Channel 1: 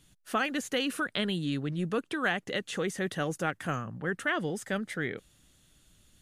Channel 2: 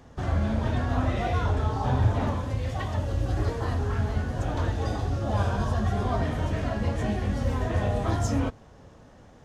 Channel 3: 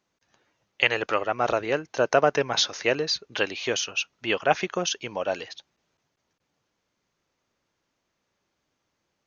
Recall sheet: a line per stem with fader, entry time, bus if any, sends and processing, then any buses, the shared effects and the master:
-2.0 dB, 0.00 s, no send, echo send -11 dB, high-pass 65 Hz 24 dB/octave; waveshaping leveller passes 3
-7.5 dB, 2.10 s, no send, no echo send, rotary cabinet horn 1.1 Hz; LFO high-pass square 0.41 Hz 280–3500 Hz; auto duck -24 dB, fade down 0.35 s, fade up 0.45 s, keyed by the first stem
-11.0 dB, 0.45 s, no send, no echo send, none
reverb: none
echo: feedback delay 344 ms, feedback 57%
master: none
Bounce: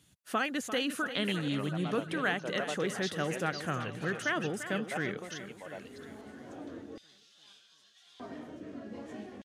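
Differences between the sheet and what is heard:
stem 1: missing waveshaping leveller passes 3; stem 2 -7.5 dB -> -14.0 dB; stem 3 -11.0 dB -> -18.0 dB

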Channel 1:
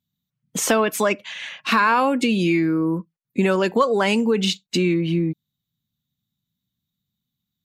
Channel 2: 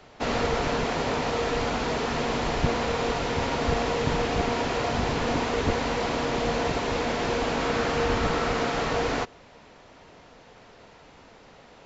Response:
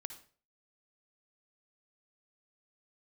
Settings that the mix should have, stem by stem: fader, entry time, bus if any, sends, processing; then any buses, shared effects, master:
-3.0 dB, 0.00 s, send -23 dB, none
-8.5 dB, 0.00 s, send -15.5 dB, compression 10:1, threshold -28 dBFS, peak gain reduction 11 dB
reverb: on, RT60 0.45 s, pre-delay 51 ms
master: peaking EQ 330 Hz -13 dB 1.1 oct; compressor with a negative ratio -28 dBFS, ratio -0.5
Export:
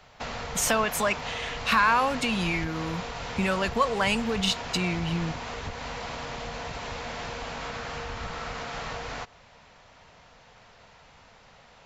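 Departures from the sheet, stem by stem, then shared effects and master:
stem 2 -8.5 dB -> -1.5 dB; master: missing compressor with a negative ratio -28 dBFS, ratio -0.5

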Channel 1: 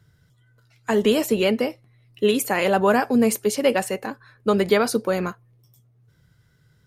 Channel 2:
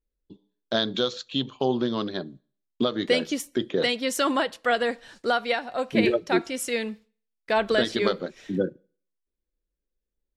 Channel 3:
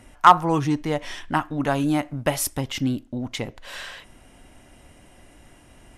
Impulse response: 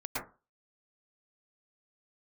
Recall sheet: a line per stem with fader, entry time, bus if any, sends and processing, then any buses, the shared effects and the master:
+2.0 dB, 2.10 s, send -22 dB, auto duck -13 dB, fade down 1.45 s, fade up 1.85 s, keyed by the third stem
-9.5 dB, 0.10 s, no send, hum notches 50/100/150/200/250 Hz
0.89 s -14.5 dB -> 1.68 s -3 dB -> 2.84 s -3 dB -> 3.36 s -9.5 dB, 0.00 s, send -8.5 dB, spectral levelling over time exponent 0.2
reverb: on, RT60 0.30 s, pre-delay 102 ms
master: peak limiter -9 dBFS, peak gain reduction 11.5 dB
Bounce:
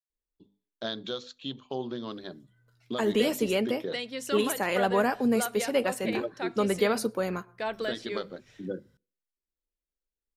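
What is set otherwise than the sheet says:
stem 1 +2.0 dB -> -7.0 dB; stem 3: muted; reverb return -8.0 dB

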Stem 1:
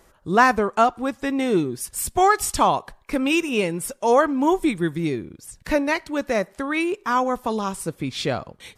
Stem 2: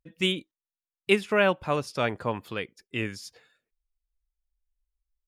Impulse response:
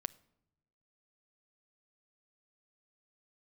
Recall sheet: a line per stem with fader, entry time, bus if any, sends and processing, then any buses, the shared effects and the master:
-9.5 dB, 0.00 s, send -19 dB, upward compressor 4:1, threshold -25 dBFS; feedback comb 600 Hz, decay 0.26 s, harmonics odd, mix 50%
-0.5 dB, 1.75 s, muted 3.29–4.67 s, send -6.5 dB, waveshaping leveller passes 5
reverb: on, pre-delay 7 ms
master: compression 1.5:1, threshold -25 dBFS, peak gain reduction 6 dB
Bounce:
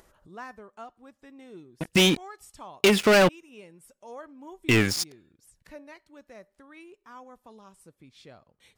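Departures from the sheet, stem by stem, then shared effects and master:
stem 1 -9.5 dB -> -20.5 dB; stem 2: send off

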